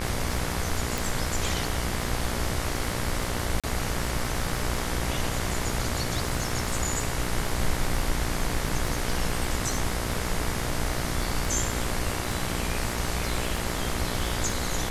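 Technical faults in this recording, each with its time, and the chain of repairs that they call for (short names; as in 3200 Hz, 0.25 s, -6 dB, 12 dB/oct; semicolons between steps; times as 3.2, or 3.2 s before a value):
buzz 60 Hz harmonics 38 -33 dBFS
crackle 32/s -31 dBFS
0.98 pop
3.6–3.64 gap 36 ms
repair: de-click; de-hum 60 Hz, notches 38; interpolate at 3.6, 36 ms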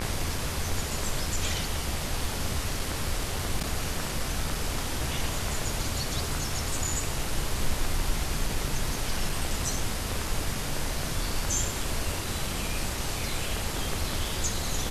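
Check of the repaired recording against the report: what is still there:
none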